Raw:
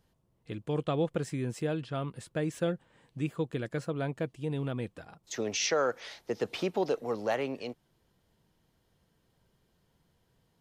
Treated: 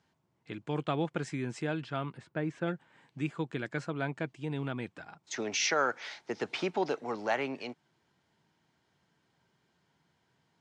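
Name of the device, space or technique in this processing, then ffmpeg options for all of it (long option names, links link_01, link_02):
car door speaker: -filter_complex "[0:a]highpass=86,equalizer=frequency=110:width_type=q:width=4:gain=-4,equalizer=frequency=200:width_type=q:width=4:gain=-3,equalizer=frequency=500:width_type=q:width=4:gain=-7,equalizer=frequency=880:width_type=q:width=4:gain=4,equalizer=frequency=1500:width_type=q:width=4:gain=5,equalizer=frequency=2200:width_type=q:width=4:gain=5,lowpass=frequency=7800:width=0.5412,lowpass=frequency=7800:width=1.3066,asplit=3[link_01][link_02][link_03];[link_01]afade=type=out:start_time=2.16:duration=0.02[link_04];[link_02]lowpass=frequency=1500:poles=1,afade=type=in:start_time=2.16:duration=0.02,afade=type=out:start_time=2.66:duration=0.02[link_05];[link_03]afade=type=in:start_time=2.66:duration=0.02[link_06];[link_04][link_05][link_06]amix=inputs=3:normalize=0,highpass=99"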